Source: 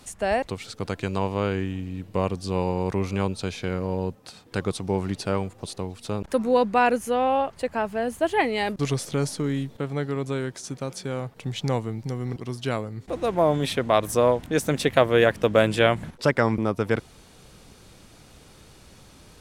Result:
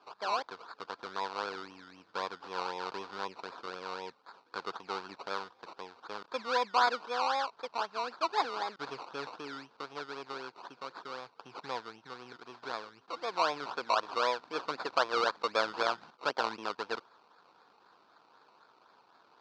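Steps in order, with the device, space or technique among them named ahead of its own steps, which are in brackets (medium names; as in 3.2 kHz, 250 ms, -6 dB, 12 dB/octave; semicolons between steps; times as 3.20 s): circuit-bent sampling toy (decimation with a swept rate 21×, swing 60% 3.9 Hz; cabinet simulation 580–4700 Hz, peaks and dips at 590 Hz -5 dB, 980 Hz +6 dB, 1.4 kHz +5 dB, 2 kHz -9 dB, 3 kHz -5 dB, 4.5 kHz +5 dB); trim -7.5 dB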